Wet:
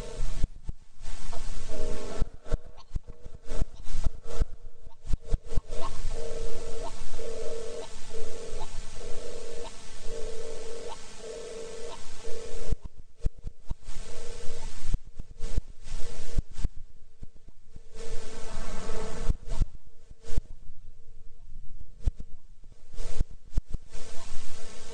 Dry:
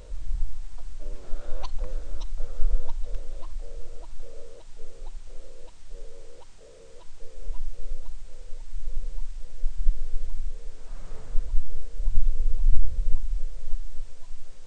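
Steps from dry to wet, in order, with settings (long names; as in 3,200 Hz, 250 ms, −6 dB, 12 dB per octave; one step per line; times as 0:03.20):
low-shelf EQ 170 Hz −5 dB
time stretch by overlap-add 1.7×, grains 22 ms
gate with flip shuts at −23 dBFS, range −25 dB
backwards echo 267 ms −20 dB
feedback echo with a swinging delay time 125 ms, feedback 44%, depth 166 cents, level −21.5 dB
level +12.5 dB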